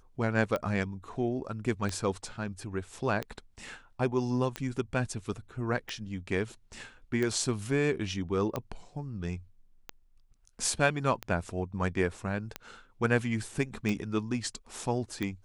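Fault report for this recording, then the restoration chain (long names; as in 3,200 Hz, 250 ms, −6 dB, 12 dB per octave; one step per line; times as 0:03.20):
scratch tick 45 rpm −18 dBFS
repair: click removal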